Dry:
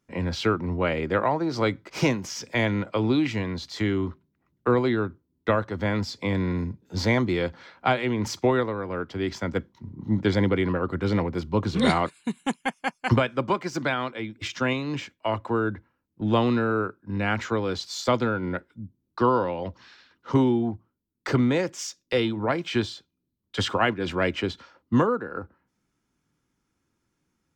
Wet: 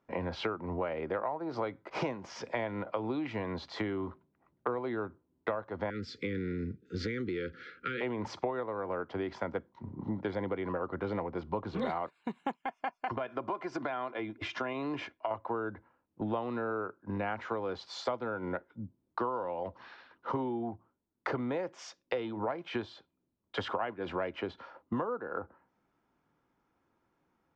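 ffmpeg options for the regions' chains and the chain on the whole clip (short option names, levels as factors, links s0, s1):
-filter_complex "[0:a]asettb=1/sr,asplit=3[s0][s1][s2];[s0]atrim=end=5.904[s3];[s1]atrim=start=5.9:end=8.01,asetpts=PTS-STARTPTS,afade=t=in:d=0.004:c=qsin,afade=t=out:st=2.106:d=0.004:c=qsin,acompressor=threshold=0.0708:ratio=6:attack=3.2:release=140:knee=1:detection=peak,asuperstop=centerf=800:order=12:qfactor=0.95,highshelf=f=6100:g=4[s4];[s2]atrim=start=8.006[s5];[s3][s4]acrossfade=d=0.004:c1=hsin:c2=qsin[s6];[s6][s5]acrossfade=d=0.004:c1=qsin:c2=hsin,asettb=1/sr,asplit=3[s7][s8][s9];[s7]atrim=end=12.624[s10];[s8]atrim=start=12.62:end=15.31,asetpts=PTS-STARTPTS,afade=t=in:d=0.004:c=qsin,afade=t=out:st=2.686:d=0.004:c=qsin,acompressor=threshold=0.0282:ratio=2.5:attack=3.2:release=140:knee=1:detection=peak,aecho=1:1:2.9:0.37,atrim=end_sample=118629[s11];[s9]atrim=start=15.306[s12];[s10][s11]acrossfade=d=0.004:c1=hsin:c2=qsin[s13];[s13][s12]acrossfade=d=0.004:c1=qsin:c2=hsin,lowpass=3900,equalizer=f=750:t=o:w=2.2:g=14,acompressor=threshold=0.0501:ratio=6,volume=0.501"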